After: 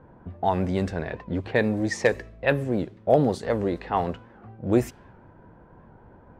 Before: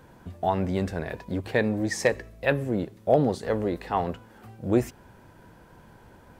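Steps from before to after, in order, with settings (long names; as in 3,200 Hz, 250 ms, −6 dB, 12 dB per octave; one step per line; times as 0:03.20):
low-pass that shuts in the quiet parts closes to 1,100 Hz, open at −20.5 dBFS
wow of a warped record 78 rpm, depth 100 cents
level +1.5 dB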